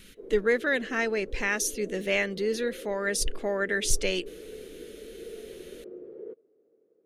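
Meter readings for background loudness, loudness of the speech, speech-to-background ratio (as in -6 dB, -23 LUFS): -44.5 LUFS, -28.0 LUFS, 16.5 dB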